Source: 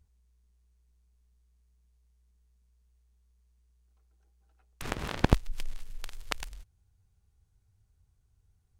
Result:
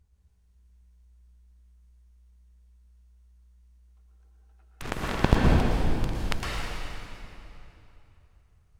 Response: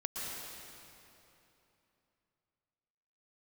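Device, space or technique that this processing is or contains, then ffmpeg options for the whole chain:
swimming-pool hall: -filter_complex "[1:a]atrim=start_sample=2205[s0];[0:a][s0]afir=irnorm=-1:irlink=0,highshelf=f=4900:g=-5,volume=1.68"

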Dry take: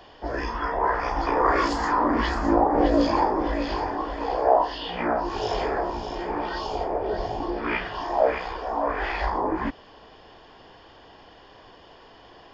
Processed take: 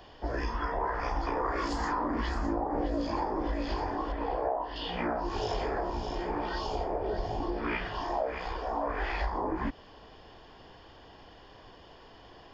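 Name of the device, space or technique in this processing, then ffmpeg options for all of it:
ASMR close-microphone chain: -filter_complex "[0:a]asettb=1/sr,asplit=3[s0][s1][s2];[s0]atrim=end=4.124[s3];[s1]atrim=start=4.12:end=4.76,asetpts=PTS-STARTPTS,afade=t=in:d=0.004:c=qsin,afade=t=out:st=0.636:d=0.004:c=qsin,lowpass=2900[s4];[s2]atrim=start=4.756[s5];[s3][s4]acrossfade=d=0.004:c1=hsin:c2=qsin[s6];[s6][s5]acrossfade=d=0.004:c1=qsin:c2=hsin,lowshelf=f=190:g=7,acompressor=threshold=0.0708:ratio=6,highshelf=f=6300:g=4.5,volume=0.596"

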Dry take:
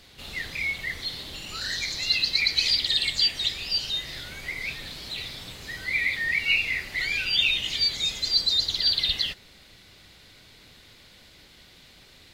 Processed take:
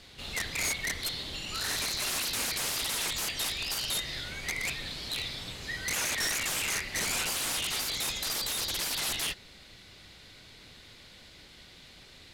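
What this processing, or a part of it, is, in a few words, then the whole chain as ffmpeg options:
overflowing digital effects unit: -af "aeval=exprs='(mod(17.8*val(0)+1,2)-1)/17.8':c=same,lowpass=12000"

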